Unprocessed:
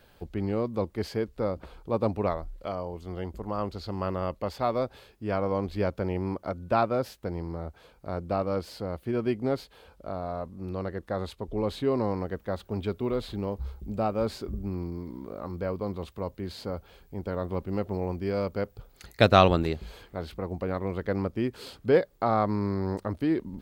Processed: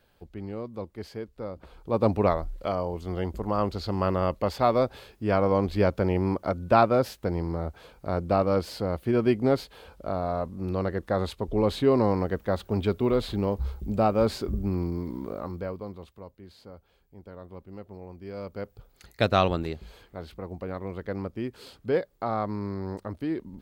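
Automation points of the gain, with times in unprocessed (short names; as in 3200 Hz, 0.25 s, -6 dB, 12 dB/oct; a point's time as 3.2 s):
1.5 s -7 dB
2.1 s +5 dB
15.29 s +5 dB
15.77 s -4.5 dB
16.36 s -12.5 dB
18.1 s -12.5 dB
18.7 s -4 dB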